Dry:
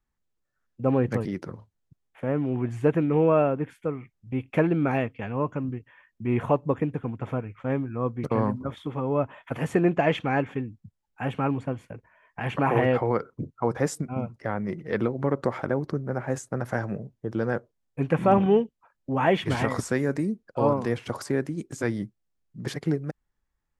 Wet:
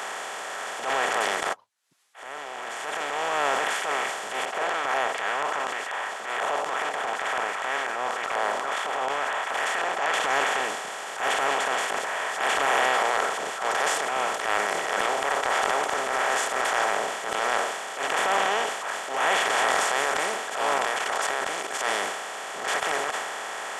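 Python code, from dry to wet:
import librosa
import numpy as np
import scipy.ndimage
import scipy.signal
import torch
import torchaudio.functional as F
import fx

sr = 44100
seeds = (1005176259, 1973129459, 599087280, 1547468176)

y = fx.filter_held_bandpass(x, sr, hz=4.1, low_hz=620.0, high_hz=1900.0, at=(4.45, 10.14))
y = fx.level_steps(y, sr, step_db=21, at=(20.78, 21.81))
y = fx.edit(y, sr, fx.fade_in_span(start_s=1.53, length_s=1.89, curve='exp'), tone=tone)
y = fx.bin_compress(y, sr, power=0.2)
y = scipy.signal.sosfilt(scipy.signal.butter(2, 1100.0, 'highpass', fs=sr, output='sos'), y)
y = fx.transient(y, sr, attack_db=-9, sustain_db=6)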